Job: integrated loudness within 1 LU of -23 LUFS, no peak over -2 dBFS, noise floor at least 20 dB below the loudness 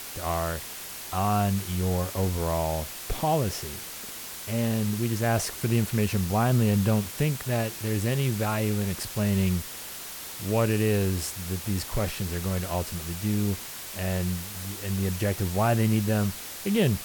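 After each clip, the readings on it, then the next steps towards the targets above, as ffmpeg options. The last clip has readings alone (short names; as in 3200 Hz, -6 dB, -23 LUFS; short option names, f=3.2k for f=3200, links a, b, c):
noise floor -39 dBFS; noise floor target -48 dBFS; loudness -27.5 LUFS; peak -12.0 dBFS; loudness target -23.0 LUFS
-> -af "afftdn=nr=9:nf=-39"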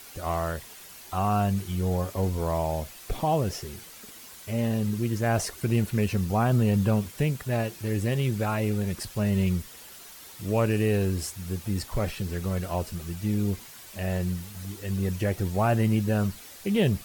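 noise floor -46 dBFS; noise floor target -48 dBFS
-> -af "afftdn=nr=6:nf=-46"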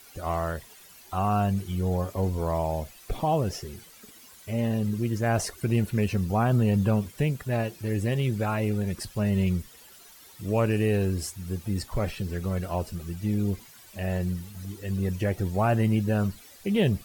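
noise floor -51 dBFS; loudness -27.5 LUFS; peak -12.5 dBFS; loudness target -23.0 LUFS
-> -af "volume=4.5dB"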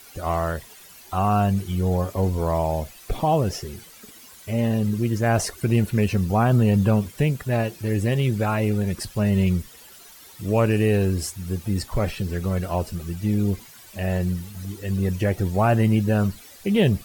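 loudness -23.0 LUFS; peak -8.0 dBFS; noise floor -47 dBFS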